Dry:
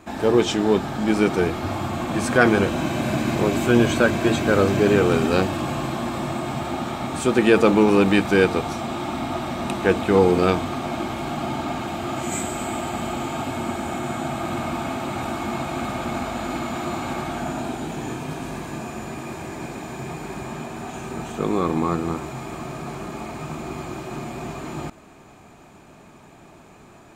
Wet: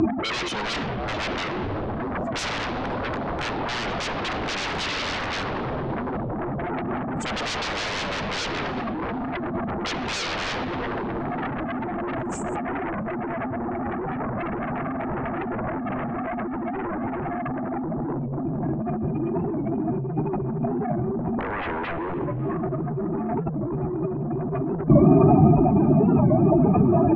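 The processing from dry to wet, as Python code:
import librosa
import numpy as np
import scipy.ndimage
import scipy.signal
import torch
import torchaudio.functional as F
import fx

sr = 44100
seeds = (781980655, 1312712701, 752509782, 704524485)

y = fx.spec_expand(x, sr, power=3.3)
y = y + 10.0 ** (-17.0 / 20.0) * np.pad(y, (int(656 * sr / 1000.0), 0))[:len(y)]
y = (np.mod(10.0 ** (15.0 / 20.0) * y + 1.0, 2.0) - 1.0) / 10.0 ** (15.0 / 20.0)
y = fx.hum_notches(y, sr, base_hz=60, count=5)
y = fx.rev_spring(y, sr, rt60_s=1.8, pass_ms=(40, 59), chirp_ms=75, drr_db=13.5)
y = fx.fold_sine(y, sr, drive_db=17, ceiling_db=-11.0)
y = fx.over_compress(y, sr, threshold_db=-22.0, ratio=-0.5)
y = fx.lowpass(y, sr, hz=fx.steps((0.0, 6500.0), (12.56, 2500.0)), slope=24)
y = fx.record_warp(y, sr, rpm=45.0, depth_cents=160.0)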